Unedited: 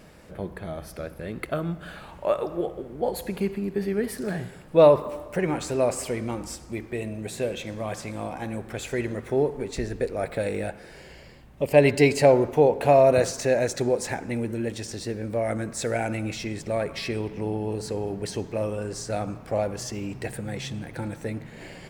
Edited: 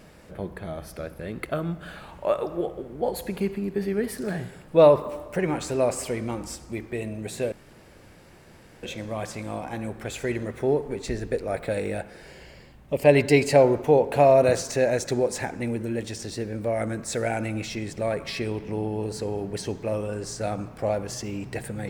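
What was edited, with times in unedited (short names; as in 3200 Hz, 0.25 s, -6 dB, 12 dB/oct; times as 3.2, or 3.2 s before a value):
7.52 insert room tone 1.31 s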